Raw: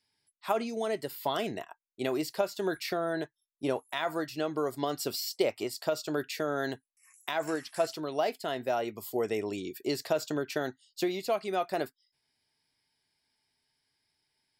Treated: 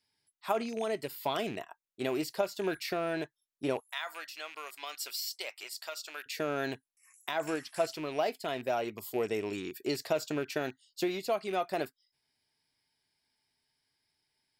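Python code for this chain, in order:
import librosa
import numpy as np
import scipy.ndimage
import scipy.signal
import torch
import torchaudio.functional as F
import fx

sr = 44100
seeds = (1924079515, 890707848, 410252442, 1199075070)

y = fx.rattle_buzz(x, sr, strikes_db=-42.0, level_db=-34.0)
y = fx.highpass(y, sr, hz=1300.0, slope=12, at=(3.8, 6.26))
y = F.gain(torch.from_numpy(y), -1.5).numpy()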